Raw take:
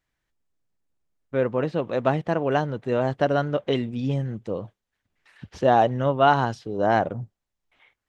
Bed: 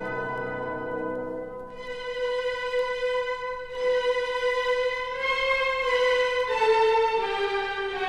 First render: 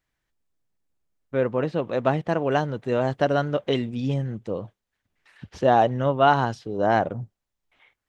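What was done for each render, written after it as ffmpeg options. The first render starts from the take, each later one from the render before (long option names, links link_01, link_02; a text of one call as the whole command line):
ffmpeg -i in.wav -filter_complex "[0:a]asettb=1/sr,asplit=3[link_01][link_02][link_03];[link_01]atrim=end=2.294[link_04];[link_02]atrim=start=2.29:end=4.14,asetpts=PTS-STARTPTS,afade=type=in:duration=0.004:curve=qsin,afade=type=out:start_time=1.846:duration=0.004:curve=qsin,highshelf=frequency=4400:gain=4.5[link_05];[link_03]atrim=start=4.136[link_06];[link_04][link_05]acrossfade=duration=0.004:curve1=hsin:curve2=qsin[link_07];[link_07][link_06]acrossfade=duration=0.004:curve1=qsin:curve2=hsin" out.wav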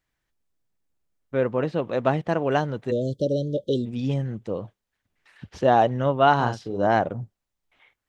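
ffmpeg -i in.wav -filter_complex "[0:a]asplit=3[link_01][link_02][link_03];[link_01]afade=type=out:start_time=2.9:duration=0.02[link_04];[link_02]asuperstop=centerf=1400:order=20:qfactor=0.52,afade=type=in:start_time=2.9:duration=0.02,afade=type=out:start_time=3.85:duration=0.02[link_05];[link_03]afade=type=in:start_time=3.85:duration=0.02[link_06];[link_04][link_05][link_06]amix=inputs=3:normalize=0,asettb=1/sr,asplit=3[link_07][link_08][link_09];[link_07]atrim=end=6.364[link_10];[link_08]atrim=start=6.36:end=6.87,asetpts=PTS-STARTPTS,afade=type=in:duration=0.004:curve=qsin,afade=type=out:start_time=0.506:duration=0.004:curve=qsin,asplit=2[link_11][link_12];[link_12]adelay=41,volume=-6dB[link_13];[link_11][link_13]amix=inputs=2:normalize=0,atrim=end_sample=22491[link_14];[link_09]atrim=start=6.866[link_15];[link_10][link_14]acrossfade=duration=0.004:curve1=hsin:curve2=qsin[link_16];[link_16][link_15]acrossfade=duration=0.004:curve1=qsin:curve2=hsin" out.wav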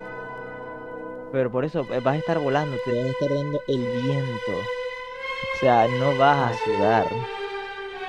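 ffmpeg -i in.wav -i bed.wav -filter_complex "[1:a]volume=-4.5dB[link_01];[0:a][link_01]amix=inputs=2:normalize=0" out.wav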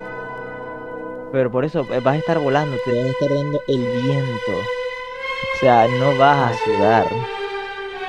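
ffmpeg -i in.wav -af "volume=5dB,alimiter=limit=-1dB:level=0:latency=1" out.wav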